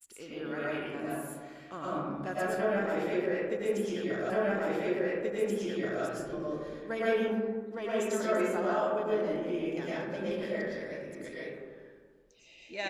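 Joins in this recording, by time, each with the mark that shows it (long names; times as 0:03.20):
0:04.30: the same again, the last 1.73 s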